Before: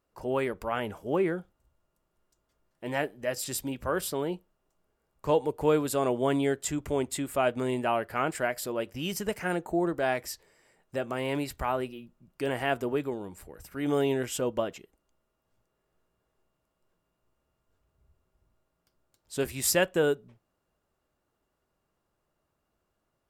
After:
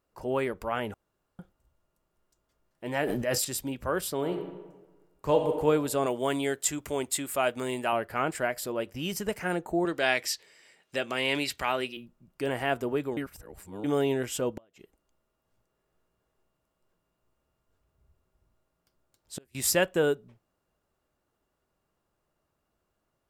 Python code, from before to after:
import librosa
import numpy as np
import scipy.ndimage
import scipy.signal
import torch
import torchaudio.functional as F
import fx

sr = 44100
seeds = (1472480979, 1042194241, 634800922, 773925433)

y = fx.sustainer(x, sr, db_per_s=23.0, at=(2.88, 3.45))
y = fx.reverb_throw(y, sr, start_s=4.14, length_s=1.38, rt60_s=1.3, drr_db=4.5)
y = fx.tilt_eq(y, sr, slope=2.0, at=(6.06, 7.93))
y = fx.weighting(y, sr, curve='D', at=(9.85, 11.97))
y = fx.gate_flip(y, sr, shuts_db=-26.0, range_db=-32, at=(14.57, 19.55))
y = fx.edit(y, sr, fx.room_tone_fill(start_s=0.94, length_s=0.45),
    fx.reverse_span(start_s=13.17, length_s=0.67), tone=tone)